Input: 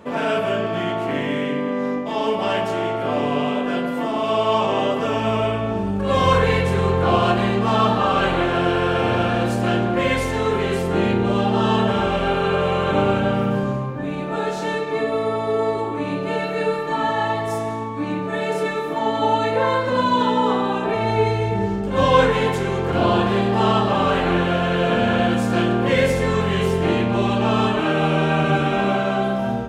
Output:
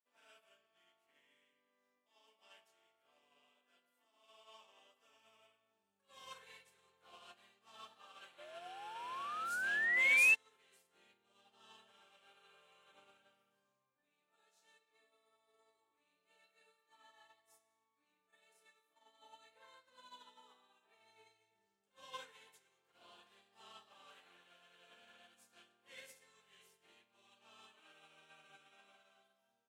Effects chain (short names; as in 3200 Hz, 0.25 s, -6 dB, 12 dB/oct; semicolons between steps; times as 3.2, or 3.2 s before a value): painted sound rise, 8.38–10.35, 580–2700 Hz -13 dBFS; differentiator; upward expander 2.5:1, over -43 dBFS; gain -4.5 dB